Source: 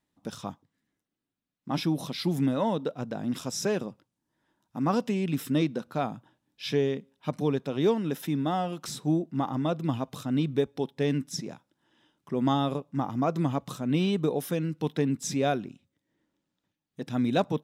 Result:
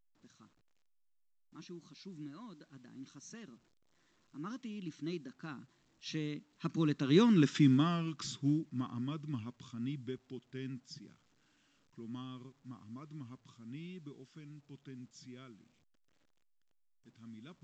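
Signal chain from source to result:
source passing by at 0:07.43, 30 m/s, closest 9.3 metres
flat-topped bell 630 Hz −15.5 dB 1.2 octaves
level +4.5 dB
A-law companding 128 kbit/s 16,000 Hz

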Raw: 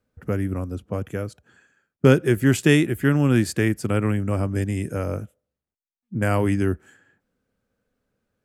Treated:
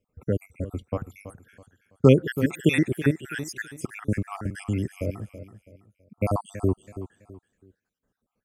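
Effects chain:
time-frequency cells dropped at random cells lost 71%
repeating echo 328 ms, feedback 33%, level −13 dB

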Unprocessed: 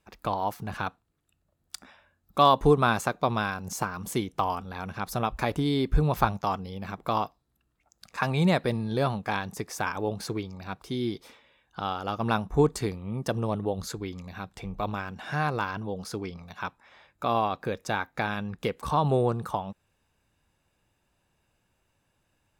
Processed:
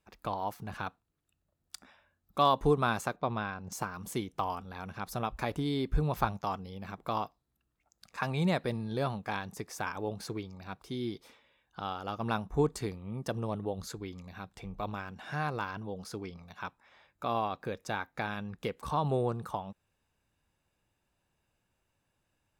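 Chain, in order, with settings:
0:03.16–0:03.72: high-frequency loss of the air 190 metres
level −6 dB

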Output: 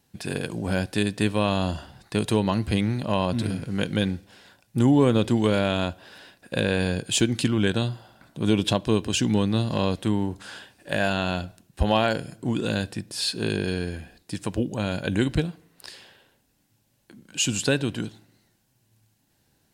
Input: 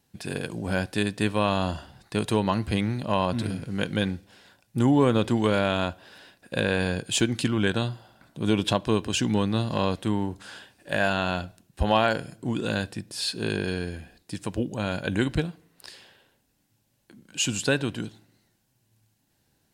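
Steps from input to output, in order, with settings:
dynamic equaliser 1,200 Hz, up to −5 dB, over −35 dBFS, Q 0.73
level +2.5 dB

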